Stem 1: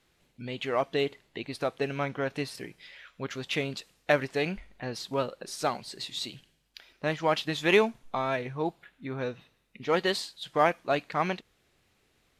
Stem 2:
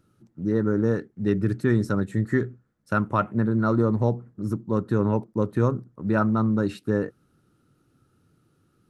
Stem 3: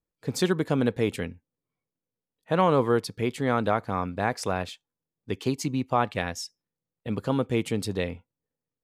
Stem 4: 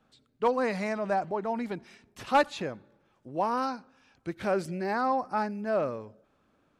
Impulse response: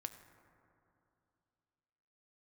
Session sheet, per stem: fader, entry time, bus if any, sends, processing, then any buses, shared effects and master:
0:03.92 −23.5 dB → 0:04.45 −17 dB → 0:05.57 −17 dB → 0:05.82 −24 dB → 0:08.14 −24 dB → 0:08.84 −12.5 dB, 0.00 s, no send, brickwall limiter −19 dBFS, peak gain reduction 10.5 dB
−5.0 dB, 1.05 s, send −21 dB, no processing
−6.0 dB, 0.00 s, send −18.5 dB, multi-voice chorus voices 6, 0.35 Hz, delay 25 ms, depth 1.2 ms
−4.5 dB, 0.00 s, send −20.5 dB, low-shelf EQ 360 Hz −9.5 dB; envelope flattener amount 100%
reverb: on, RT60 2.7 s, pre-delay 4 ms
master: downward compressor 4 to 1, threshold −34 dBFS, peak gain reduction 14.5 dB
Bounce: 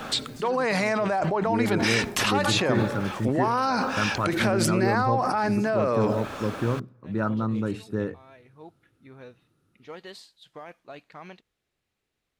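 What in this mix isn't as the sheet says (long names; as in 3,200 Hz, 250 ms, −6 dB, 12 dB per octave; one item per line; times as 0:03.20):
stem 3 −6.0 dB → −14.5 dB
master: missing downward compressor 4 to 1, threshold −34 dBFS, peak gain reduction 14.5 dB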